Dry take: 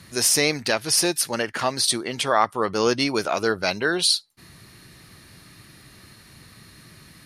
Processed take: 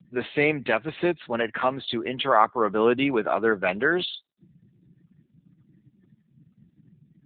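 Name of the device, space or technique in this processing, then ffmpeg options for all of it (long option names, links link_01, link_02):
mobile call with aggressive noise cancelling: -filter_complex "[0:a]asplit=3[link_01][link_02][link_03];[link_01]afade=type=out:start_time=0.81:duration=0.02[link_04];[link_02]lowpass=7500,afade=type=in:start_time=0.81:duration=0.02,afade=type=out:start_time=1.38:duration=0.02[link_05];[link_03]afade=type=in:start_time=1.38:duration=0.02[link_06];[link_04][link_05][link_06]amix=inputs=3:normalize=0,highpass=frequency=130:width=0.5412,highpass=frequency=130:width=1.3066,afftdn=noise_reduction=36:noise_floor=-40,volume=1dB" -ar 8000 -c:a libopencore_amrnb -b:a 7950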